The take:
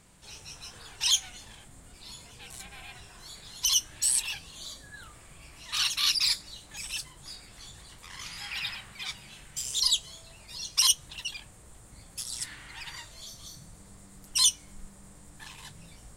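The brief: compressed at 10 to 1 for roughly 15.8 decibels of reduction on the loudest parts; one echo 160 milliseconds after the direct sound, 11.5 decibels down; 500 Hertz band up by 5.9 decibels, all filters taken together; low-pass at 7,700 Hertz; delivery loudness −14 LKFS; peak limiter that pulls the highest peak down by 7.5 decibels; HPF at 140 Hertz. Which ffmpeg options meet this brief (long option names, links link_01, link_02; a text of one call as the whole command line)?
ffmpeg -i in.wav -af "highpass=140,lowpass=7700,equalizer=frequency=500:width_type=o:gain=7.5,acompressor=threshold=-36dB:ratio=10,alimiter=level_in=7dB:limit=-24dB:level=0:latency=1,volume=-7dB,aecho=1:1:160:0.266,volume=28.5dB" out.wav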